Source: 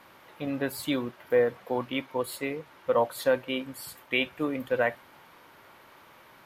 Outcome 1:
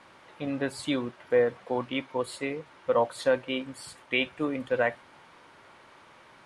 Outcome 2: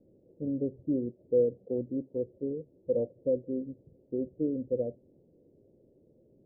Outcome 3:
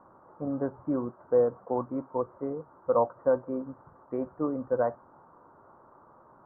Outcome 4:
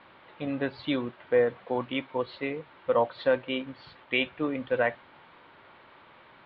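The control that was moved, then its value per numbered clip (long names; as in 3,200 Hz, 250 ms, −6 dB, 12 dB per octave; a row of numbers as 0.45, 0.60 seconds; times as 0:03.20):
Butterworth low-pass, frequency: 10,000, 510, 1,300, 4,100 Hertz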